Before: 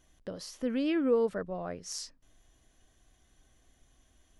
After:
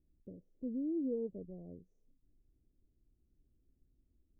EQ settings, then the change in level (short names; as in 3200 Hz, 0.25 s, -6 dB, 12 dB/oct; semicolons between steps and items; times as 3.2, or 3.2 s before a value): inverse Chebyshev band-stop 1600–4700 Hz, stop band 80 dB; dynamic EQ 1000 Hz, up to +6 dB, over -50 dBFS, Q 0.81; elliptic low-pass 6200 Hz; -6.0 dB